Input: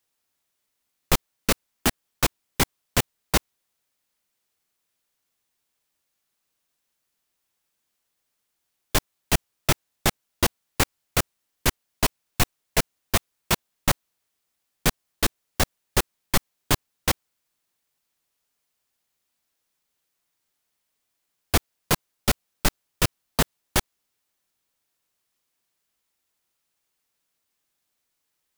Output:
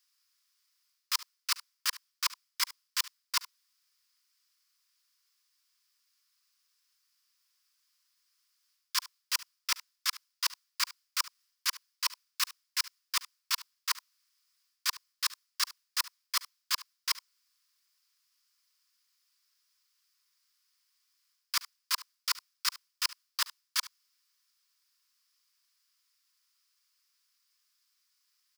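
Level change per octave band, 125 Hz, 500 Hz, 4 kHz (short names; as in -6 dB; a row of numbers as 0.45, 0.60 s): under -40 dB, under -40 dB, -3.0 dB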